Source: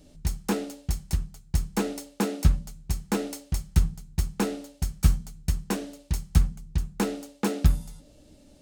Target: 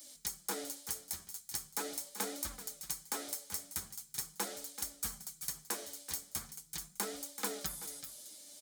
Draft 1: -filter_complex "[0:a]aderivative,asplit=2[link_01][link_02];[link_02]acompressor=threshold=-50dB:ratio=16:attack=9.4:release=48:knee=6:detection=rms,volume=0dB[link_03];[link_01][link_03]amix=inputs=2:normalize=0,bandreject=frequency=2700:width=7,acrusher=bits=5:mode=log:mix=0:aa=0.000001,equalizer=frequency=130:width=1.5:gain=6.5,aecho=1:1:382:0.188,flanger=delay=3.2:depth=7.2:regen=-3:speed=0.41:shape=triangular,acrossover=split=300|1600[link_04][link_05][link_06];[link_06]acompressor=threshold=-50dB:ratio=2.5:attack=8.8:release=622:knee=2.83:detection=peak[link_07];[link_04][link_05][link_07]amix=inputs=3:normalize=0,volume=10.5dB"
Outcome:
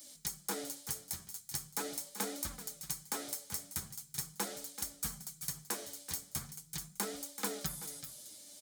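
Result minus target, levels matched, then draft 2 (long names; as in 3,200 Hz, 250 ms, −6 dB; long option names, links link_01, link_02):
125 Hz band +6.5 dB
-filter_complex "[0:a]aderivative,asplit=2[link_01][link_02];[link_02]acompressor=threshold=-50dB:ratio=16:attack=9.4:release=48:knee=6:detection=rms,volume=0dB[link_03];[link_01][link_03]amix=inputs=2:normalize=0,bandreject=frequency=2700:width=7,acrusher=bits=5:mode=log:mix=0:aa=0.000001,equalizer=frequency=130:width=1.5:gain=-4.5,aecho=1:1:382:0.188,flanger=delay=3.2:depth=7.2:regen=-3:speed=0.41:shape=triangular,acrossover=split=300|1600[link_04][link_05][link_06];[link_06]acompressor=threshold=-50dB:ratio=2.5:attack=8.8:release=622:knee=2.83:detection=peak[link_07];[link_04][link_05][link_07]amix=inputs=3:normalize=0,volume=10.5dB"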